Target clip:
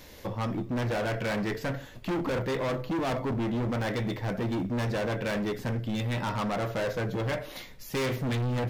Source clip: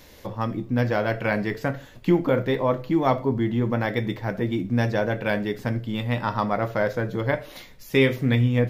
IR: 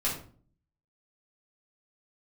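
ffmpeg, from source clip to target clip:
-af "volume=27dB,asoftclip=hard,volume=-27dB"

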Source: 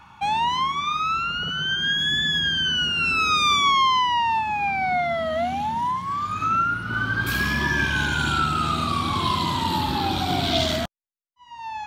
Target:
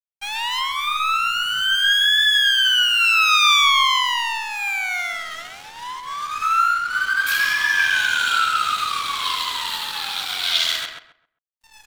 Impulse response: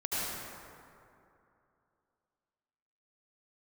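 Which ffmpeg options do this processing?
-filter_complex "[0:a]highpass=f=1.3k:w=0.5412,highpass=f=1.3k:w=1.3066,aeval=exprs='sgn(val(0))*max(abs(val(0))-0.0112,0)':c=same,asplit=2[a][b];[b]adelay=133,lowpass=f=2.2k:p=1,volume=-4dB,asplit=2[c][d];[d]adelay=133,lowpass=f=2.2k:p=1,volume=0.26,asplit=2[e][f];[f]adelay=133,lowpass=f=2.2k:p=1,volume=0.26,asplit=2[g][h];[h]adelay=133,lowpass=f=2.2k:p=1,volume=0.26[i];[c][e][g][i]amix=inputs=4:normalize=0[j];[a][j]amix=inputs=2:normalize=0,volume=7dB"

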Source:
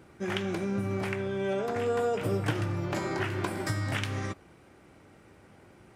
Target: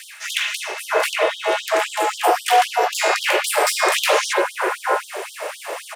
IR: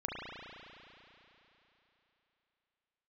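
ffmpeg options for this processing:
-filter_complex "[0:a]highpass=f=110:w=0.5412,highpass=f=110:w=1.3066,highshelf=f=7.2k:g=8.5,areverse,acompressor=threshold=-40dB:ratio=5,areverse,asoftclip=type=hard:threshold=-38dB,aeval=exprs='val(0)*sin(2*PI*260*n/s)':c=same,acrossover=split=1600[a][b];[a]adelay=610[c];[c][b]amix=inputs=2:normalize=0[d];[1:a]atrim=start_sample=2205,afade=t=out:st=0.15:d=0.01,atrim=end_sample=7056[e];[d][e]afir=irnorm=-1:irlink=0,alimiter=level_in=36dB:limit=-1dB:release=50:level=0:latency=1,afftfilt=real='re*gte(b*sr/1024,330*pow(3100/330,0.5+0.5*sin(2*PI*3.8*pts/sr)))':imag='im*gte(b*sr/1024,330*pow(3100/330,0.5+0.5*sin(2*PI*3.8*pts/sr)))':win_size=1024:overlap=0.75,volume=-2dB"

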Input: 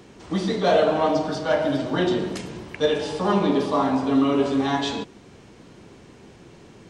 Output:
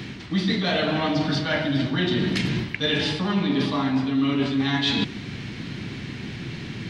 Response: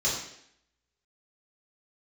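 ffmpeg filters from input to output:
-af "equalizer=f=125:t=o:w=1:g=9,equalizer=f=250:t=o:w=1:g=5,equalizer=f=500:t=o:w=1:g=-8,equalizer=f=1k:t=o:w=1:g=-4,equalizer=f=2k:t=o:w=1:g=9,equalizer=f=4k:t=o:w=1:g=9,equalizer=f=8k:t=o:w=1:g=-8,areverse,acompressor=threshold=-30dB:ratio=6,areverse,volume=9dB"

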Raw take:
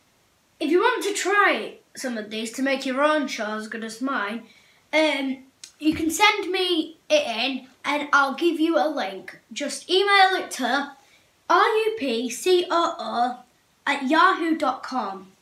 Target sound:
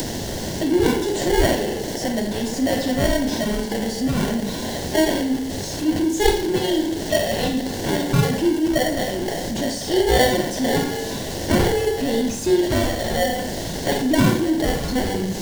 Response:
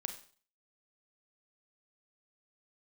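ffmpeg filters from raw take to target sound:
-filter_complex "[0:a]aeval=exprs='val(0)+0.5*0.119*sgn(val(0))':c=same,acrossover=split=5700[a][b];[b]acompressor=threshold=-39dB:ratio=4:attack=1:release=60[c];[a][c]amix=inputs=2:normalize=0,acrossover=split=340|430|3800[d][e][f][g];[f]acrusher=samples=35:mix=1:aa=0.000001[h];[d][e][h][g]amix=inputs=4:normalize=0[i];[1:a]atrim=start_sample=2205[j];[i][j]afir=irnorm=-1:irlink=0,acompressor=mode=upward:threshold=-24dB:ratio=2.5"

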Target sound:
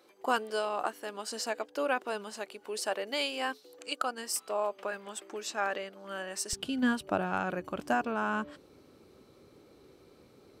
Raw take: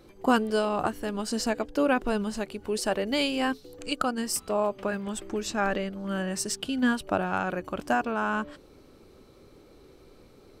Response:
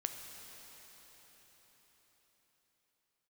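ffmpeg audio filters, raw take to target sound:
-af "asetnsamples=n=441:p=0,asendcmd='6.53 highpass f 86',highpass=490,volume=-3.5dB"

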